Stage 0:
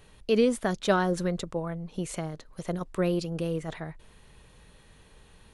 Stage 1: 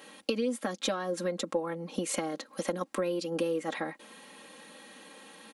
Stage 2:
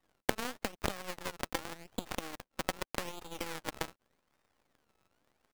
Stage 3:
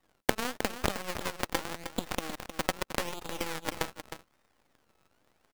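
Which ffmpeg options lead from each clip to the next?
-af "highpass=f=210:w=0.5412,highpass=f=210:w=1.3066,acompressor=threshold=-35dB:ratio=20,aecho=1:1:3.7:0.78,volume=6.5dB"
-filter_complex "[0:a]acrusher=samples=23:mix=1:aa=0.000001:lfo=1:lforange=23:lforate=0.85,acrossover=split=130[a][b];[b]acompressor=threshold=-32dB:ratio=2.5[c];[a][c]amix=inputs=2:normalize=0,aeval=exprs='0.251*(cos(1*acos(clip(val(0)/0.251,-1,1)))-cos(1*PI/2))+0.0355*(cos(7*acos(clip(val(0)/0.251,-1,1)))-cos(7*PI/2))+0.0126*(cos(8*acos(clip(val(0)/0.251,-1,1)))-cos(8*PI/2))':c=same,volume=5dB"
-af "aecho=1:1:311:0.316,volume=4.5dB"

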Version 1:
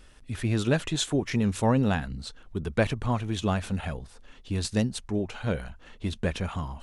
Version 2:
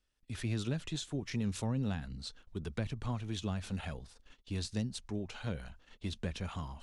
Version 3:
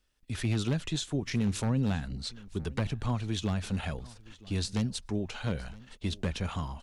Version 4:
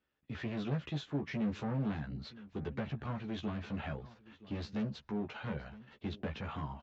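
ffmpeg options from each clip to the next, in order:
-filter_complex "[0:a]agate=range=-21dB:threshold=-47dB:ratio=16:detection=peak,equalizer=f=4.8k:w=0.79:g=6.5,acrossover=split=240[a][b];[b]acompressor=threshold=-31dB:ratio=10[c];[a][c]amix=inputs=2:normalize=0,volume=-8dB"
-af "aeval=exprs='0.0501*(abs(mod(val(0)/0.0501+3,4)-2)-1)':c=same,aecho=1:1:969:0.0841,volume=6dB"
-filter_complex "[0:a]aresample=16000,asoftclip=type=hard:threshold=-28.5dB,aresample=44100,highpass=110,lowpass=2.3k,asplit=2[a][b];[b]adelay=14,volume=-4dB[c];[a][c]amix=inputs=2:normalize=0,volume=-3.5dB"

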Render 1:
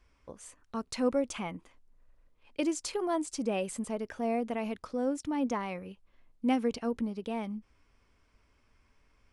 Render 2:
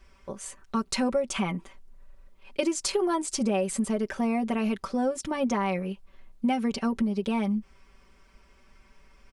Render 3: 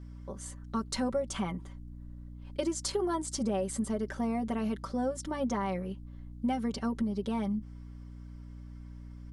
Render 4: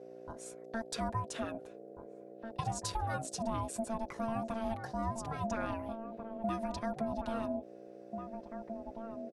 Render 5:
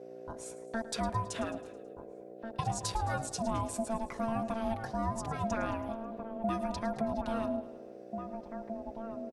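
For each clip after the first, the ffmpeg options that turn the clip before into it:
-af "aecho=1:1:5.2:0.84,acompressor=threshold=-30dB:ratio=6,volume=7.5dB"
-af "aeval=exprs='val(0)+0.0112*(sin(2*PI*60*n/s)+sin(2*PI*2*60*n/s)/2+sin(2*PI*3*60*n/s)/3+sin(2*PI*4*60*n/s)/4+sin(2*PI*5*60*n/s)/5)':c=same,equalizer=f=2.5k:t=o:w=0.28:g=-11,volume=-5dB"
-filter_complex "[0:a]asplit=2[a][b];[b]adelay=1691,volume=-7dB,highshelf=f=4k:g=-38[c];[a][c]amix=inputs=2:normalize=0,aeval=exprs='val(0)*sin(2*PI*450*n/s)':c=same,volume=-2dB"
-af "aecho=1:1:108|216|324|432|540:0.158|0.0888|0.0497|0.0278|0.0156,volume=2.5dB"

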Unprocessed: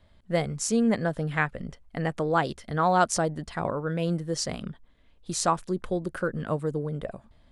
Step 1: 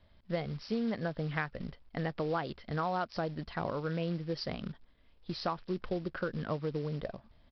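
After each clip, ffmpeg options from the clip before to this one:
-af "acompressor=threshold=-25dB:ratio=10,aresample=11025,acrusher=bits=5:mode=log:mix=0:aa=0.000001,aresample=44100,volume=-4dB"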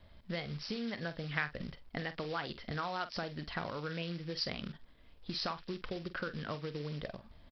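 -filter_complex "[0:a]acrossover=split=1600[a][b];[a]acompressor=threshold=-43dB:ratio=5[c];[c][b]amix=inputs=2:normalize=0,asplit=2[d][e];[e]adelay=47,volume=-12.5dB[f];[d][f]amix=inputs=2:normalize=0,volume=4.5dB"

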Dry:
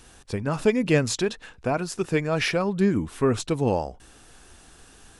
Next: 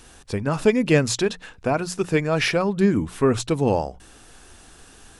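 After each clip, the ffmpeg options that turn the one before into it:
-af "bandreject=f=60:t=h:w=6,bandreject=f=120:t=h:w=6,bandreject=f=180:t=h:w=6,volume=3dB"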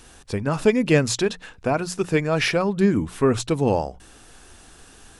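-af anull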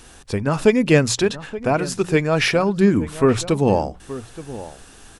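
-filter_complex "[0:a]asplit=2[a][b];[b]adelay=874.6,volume=-15dB,highshelf=f=4k:g=-19.7[c];[a][c]amix=inputs=2:normalize=0,volume=3dB"

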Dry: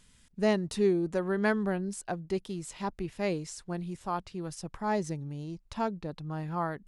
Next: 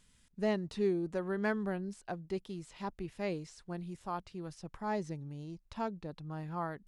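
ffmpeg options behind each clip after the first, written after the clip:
-filter_complex "[0:a]asoftclip=type=hard:threshold=-16dB,acrossover=split=5100[a][b];[b]acompressor=threshold=-54dB:ratio=4:attack=1:release=60[c];[a][c]amix=inputs=2:normalize=0,volume=-5.5dB"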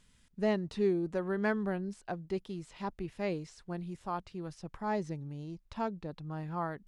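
-af "highshelf=f=6k:g=-5.5,volume=2dB"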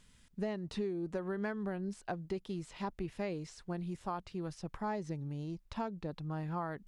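-af "acompressor=threshold=-35dB:ratio=12,volume=2dB"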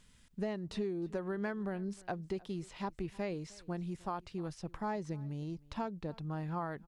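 -af "aecho=1:1:309:0.0708"

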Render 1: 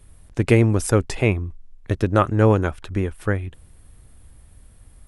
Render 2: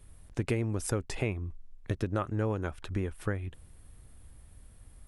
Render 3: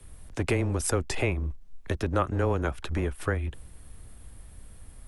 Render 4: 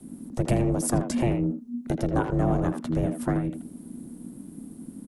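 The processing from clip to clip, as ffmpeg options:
-af "acompressor=threshold=-23dB:ratio=4,volume=-5dB"
-filter_complex "[0:a]afreqshift=-13,acrossover=split=340|870|3200[a][b][c][d];[a]volume=33dB,asoftclip=hard,volume=-33dB[e];[e][b][c][d]amix=inputs=4:normalize=0,volume=7dB"
-filter_complex "[0:a]aeval=exprs='val(0)*sin(2*PI*240*n/s)':c=same,equalizer=f=2.3k:t=o:w=2.5:g=-13,asplit=2[a][b];[b]adelay=80,highpass=300,lowpass=3.4k,asoftclip=type=hard:threshold=-26.5dB,volume=-7dB[c];[a][c]amix=inputs=2:normalize=0,volume=7dB"

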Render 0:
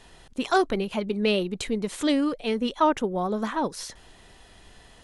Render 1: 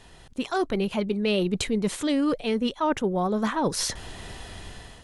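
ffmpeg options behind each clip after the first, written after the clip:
-af "dynaudnorm=f=330:g=5:m=12dB,equalizer=f=100:t=o:w=1.4:g=5.5,areverse,acompressor=threshold=-22dB:ratio=6,areverse"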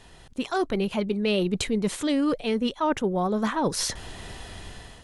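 -af anull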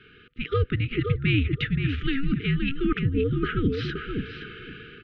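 -filter_complex "[0:a]highpass=f=330:t=q:w=0.5412,highpass=f=330:t=q:w=1.307,lowpass=f=3.4k:t=q:w=0.5176,lowpass=f=3.4k:t=q:w=0.7071,lowpass=f=3.4k:t=q:w=1.932,afreqshift=-280,afftfilt=real='re*(1-between(b*sr/4096,490,1200))':imag='im*(1-between(b*sr/4096,490,1200))':win_size=4096:overlap=0.75,asplit=2[a][b];[b]adelay=522,lowpass=f=2.1k:p=1,volume=-5dB,asplit=2[c][d];[d]adelay=522,lowpass=f=2.1k:p=1,volume=0.18,asplit=2[e][f];[f]adelay=522,lowpass=f=2.1k:p=1,volume=0.18[g];[a][c][e][g]amix=inputs=4:normalize=0,volume=4dB"

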